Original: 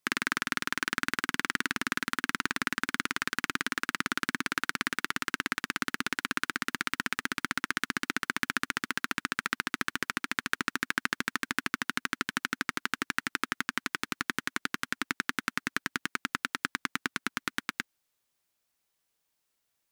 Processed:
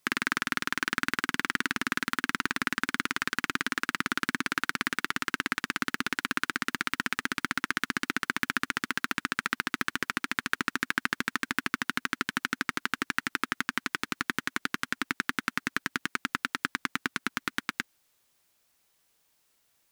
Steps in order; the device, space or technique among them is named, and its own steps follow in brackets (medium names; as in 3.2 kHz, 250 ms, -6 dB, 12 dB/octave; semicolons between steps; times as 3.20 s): clipper into limiter (hard clipper -10.5 dBFS, distortion -21 dB; peak limiter -18 dBFS, peak gain reduction 7.5 dB); trim +9 dB